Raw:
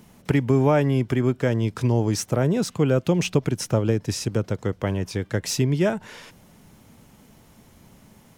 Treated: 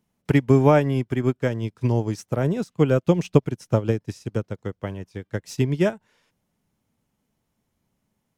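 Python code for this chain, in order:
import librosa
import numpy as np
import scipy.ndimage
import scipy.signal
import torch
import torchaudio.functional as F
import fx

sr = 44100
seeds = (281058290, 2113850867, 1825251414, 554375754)

y = fx.upward_expand(x, sr, threshold_db=-34.0, expansion=2.5)
y = F.gain(torch.from_numpy(y), 5.5).numpy()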